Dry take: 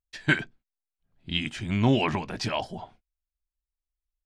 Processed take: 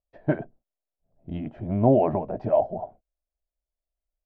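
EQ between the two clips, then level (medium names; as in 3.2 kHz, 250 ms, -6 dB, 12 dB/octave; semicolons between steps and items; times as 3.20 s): resonant low-pass 630 Hz, resonance Q 4.9; 0.0 dB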